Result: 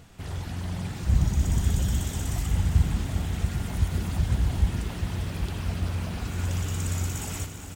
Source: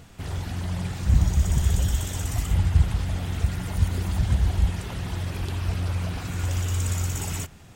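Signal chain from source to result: frequency-shifting echo 0.1 s, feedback 53%, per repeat +67 Hz, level -14 dB; lo-fi delay 0.399 s, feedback 80%, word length 8-bit, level -10.5 dB; gain -3 dB

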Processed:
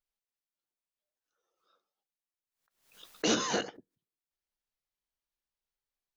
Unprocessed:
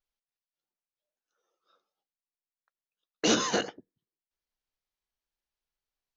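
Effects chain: backwards sustainer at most 110 dB/s; gain -3.5 dB

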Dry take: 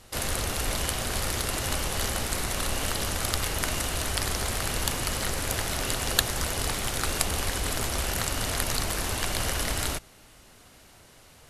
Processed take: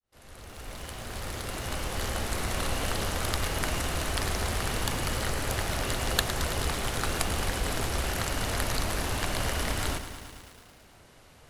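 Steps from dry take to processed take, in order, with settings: opening faded in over 2.51 s; high shelf 3800 Hz -7 dB; lo-fi delay 0.11 s, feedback 80%, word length 8-bit, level -11 dB

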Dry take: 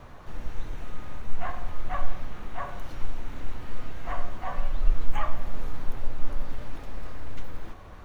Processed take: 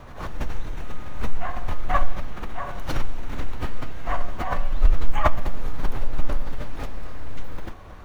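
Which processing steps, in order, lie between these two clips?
backwards sustainer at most 77 dB/s; gain +2.5 dB

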